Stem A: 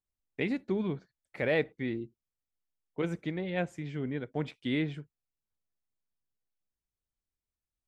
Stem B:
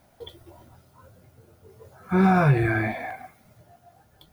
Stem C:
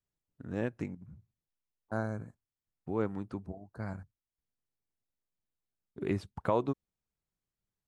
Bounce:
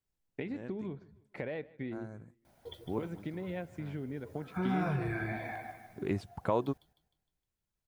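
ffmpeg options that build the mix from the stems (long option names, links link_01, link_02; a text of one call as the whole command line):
ffmpeg -i stem1.wav -i stem2.wav -i stem3.wav -filter_complex "[0:a]highshelf=frequency=2100:gain=-8.5,acompressor=threshold=-38dB:ratio=12,volume=2.5dB,asplit=3[link_01][link_02][link_03];[link_02]volume=-22dB[link_04];[1:a]acompressor=threshold=-31dB:ratio=2,adelay=2450,volume=-6dB,asplit=2[link_05][link_06];[link_06]volume=-9.5dB[link_07];[2:a]volume=-1dB[link_08];[link_03]apad=whole_len=347367[link_09];[link_08][link_09]sidechaincompress=threshold=-48dB:ratio=8:attack=16:release=629[link_10];[link_04][link_07]amix=inputs=2:normalize=0,aecho=0:1:154|308|462|616|770|924:1|0.42|0.176|0.0741|0.0311|0.0131[link_11];[link_01][link_05][link_10][link_11]amix=inputs=4:normalize=0,bandreject=frequency=1200:width=19" out.wav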